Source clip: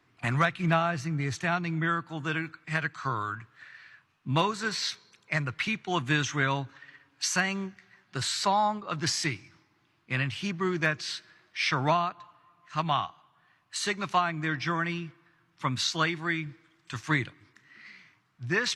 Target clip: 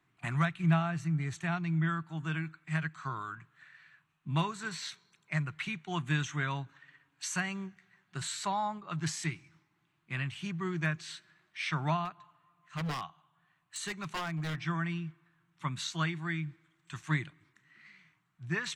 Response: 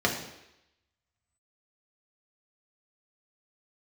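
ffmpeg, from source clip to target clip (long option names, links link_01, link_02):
-filter_complex "[0:a]equalizer=frequency=100:width_type=o:width=0.33:gain=-5,equalizer=frequency=160:width_type=o:width=0.33:gain=10,equalizer=frequency=250:width_type=o:width=0.33:gain=-4,equalizer=frequency=500:width_type=o:width=0.33:gain=-10,equalizer=frequency=5000:width_type=o:width=0.33:gain=-9,equalizer=frequency=8000:width_type=o:width=0.33:gain=5,asettb=1/sr,asplit=3[link_01][link_02][link_03];[link_01]atrim=end=12.054[link_04];[link_02]atrim=start=12.05:end=14.61,asetpts=PTS-STARTPTS,afade=type=in:duration=0.004:curve=qsin,afade=type=out:start_time=2.556:duration=0.004:curve=qsin,aeval=exprs='0.0708*(abs(mod(val(0)/0.0708+3,4)-2)-1)':channel_layout=same[link_05];[link_03]atrim=start=14.606[link_06];[link_04][link_05]acrossfade=duration=0.004:curve1=hsin:curve2=qsin[link_07];[link_07][link_06]acrossfade=duration=0.004:curve1=qsin:curve2=hsin,volume=-7dB"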